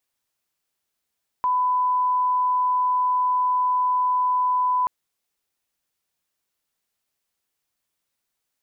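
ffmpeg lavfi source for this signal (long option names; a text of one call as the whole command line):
ffmpeg -f lavfi -i "sine=frequency=1000:duration=3.43:sample_rate=44100,volume=0.06dB" out.wav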